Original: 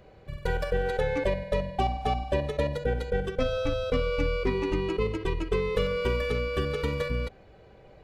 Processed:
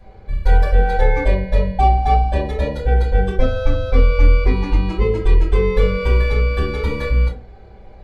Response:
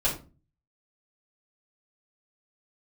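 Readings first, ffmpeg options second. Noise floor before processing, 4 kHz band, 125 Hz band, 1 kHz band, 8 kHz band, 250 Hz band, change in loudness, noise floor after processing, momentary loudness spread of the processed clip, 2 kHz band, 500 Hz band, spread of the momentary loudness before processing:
−53 dBFS, +3.0 dB, +14.0 dB, +12.0 dB, can't be measured, +7.0 dB, +11.0 dB, −40 dBFS, 6 LU, +7.5 dB, +5.5 dB, 4 LU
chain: -filter_complex "[1:a]atrim=start_sample=2205,asetrate=61740,aresample=44100[link_01];[0:a][link_01]afir=irnorm=-1:irlink=0,volume=-1.5dB"

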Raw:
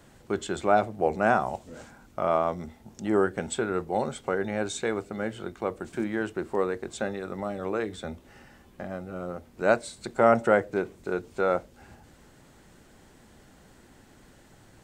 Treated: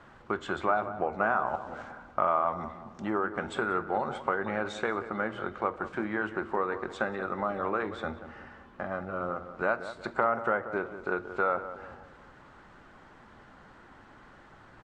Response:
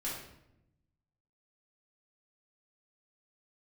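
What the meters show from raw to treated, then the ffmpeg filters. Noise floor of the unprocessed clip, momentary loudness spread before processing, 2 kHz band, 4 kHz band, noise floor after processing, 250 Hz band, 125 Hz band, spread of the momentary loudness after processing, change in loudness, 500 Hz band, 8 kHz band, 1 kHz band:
−56 dBFS, 15 LU, +0.5 dB, −5.0 dB, −54 dBFS, −5.0 dB, −5.5 dB, 11 LU, −3.5 dB, −5.5 dB, below −15 dB, −0.5 dB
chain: -filter_complex "[0:a]acompressor=threshold=-27dB:ratio=6,lowpass=3700,equalizer=frequency=1200:width=1.1:gain=13,asplit=2[link_01][link_02];[link_02]adelay=183,lowpass=frequency=1500:poles=1,volume=-11dB,asplit=2[link_03][link_04];[link_04]adelay=183,lowpass=frequency=1500:poles=1,volume=0.47,asplit=2[link_05][link_06];[link_06]adelay=183,lowpass=frequency=1500:poles=1,volume=0.47,asplit=2[link_07][link_08];[link_08]adelay=183,lowpass=frequency=1500:poles=1,volume=0.47,asplit=2[link_09][link_10];[link_10]adelay=183,lowpass=frequency=1500:poles=1,volume=0.47[link_11];[link_01][link_03][link_05][link_07][link_09][link_11]amix=inputs=6:normalize=0,asplit=2[link_12][link_13];[1:a]atrim=start_sample=2205,highshelf=frequency=4800:gain=10[link_14];[link_13][link_14]afir=irnorm=-1:irlink=0,volume=-19dB[link_15];[link_12][link_15]amix=inputs=2:normalize=0,volume=-3dB" -ar 48000 -c:a libvorbis -b:a 64k

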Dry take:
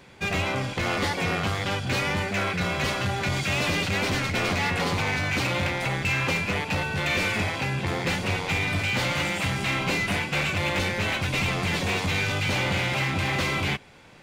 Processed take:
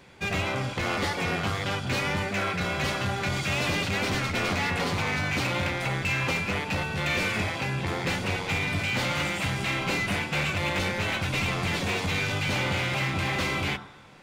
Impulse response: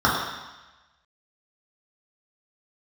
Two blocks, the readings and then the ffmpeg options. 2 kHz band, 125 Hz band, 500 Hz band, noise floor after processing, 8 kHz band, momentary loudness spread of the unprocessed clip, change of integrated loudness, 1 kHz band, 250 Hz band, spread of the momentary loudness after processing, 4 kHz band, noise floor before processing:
−2.0 dB, −2.0 dB, −2.0 dB, −37 dBFS, −2.0 dB, 3 LU, −2.0 dB, −1.5 dB, −1.5 dB, 3 LU, −2.0 dB, −36 dBFS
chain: -filter_complex "[0:a]asplit=2[link_01][link_02];[1:a]atrim=start_sample=2205,adelay=21[link_03];[link_02][link_03]afir=irnorm=-1:irlink=0,volume=-31.5dB[link_04];[link_01][link_04]amix=inputs=2:normalize=0,volume=-2dB"

